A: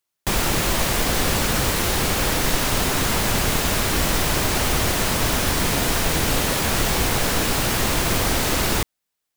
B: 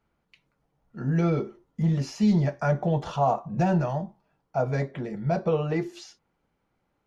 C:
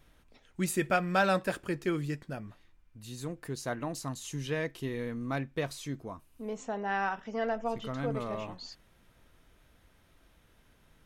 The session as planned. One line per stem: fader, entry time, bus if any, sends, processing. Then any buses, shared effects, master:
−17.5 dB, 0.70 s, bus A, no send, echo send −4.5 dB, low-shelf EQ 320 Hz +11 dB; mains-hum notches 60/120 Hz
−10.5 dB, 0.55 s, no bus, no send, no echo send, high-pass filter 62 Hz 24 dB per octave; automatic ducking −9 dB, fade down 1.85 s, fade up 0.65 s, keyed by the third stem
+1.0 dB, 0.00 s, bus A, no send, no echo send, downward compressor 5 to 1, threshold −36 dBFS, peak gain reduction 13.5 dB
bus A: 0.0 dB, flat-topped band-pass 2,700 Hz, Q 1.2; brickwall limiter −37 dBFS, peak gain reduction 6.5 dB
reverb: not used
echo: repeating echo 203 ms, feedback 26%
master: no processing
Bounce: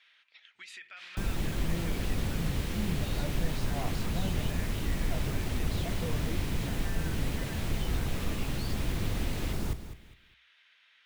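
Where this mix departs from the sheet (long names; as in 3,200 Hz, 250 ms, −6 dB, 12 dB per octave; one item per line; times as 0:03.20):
stem C +1.0 dB → +10.0 dB
master: extra low-shelf EQ 440 Hz +6 dB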